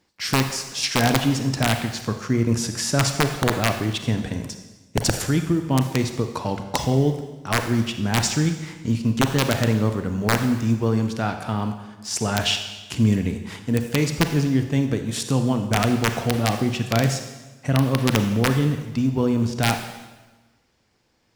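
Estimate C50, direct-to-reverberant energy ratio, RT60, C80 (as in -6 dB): 8.0 dB, 6.5 dB, 1.2 s, 9.5 dB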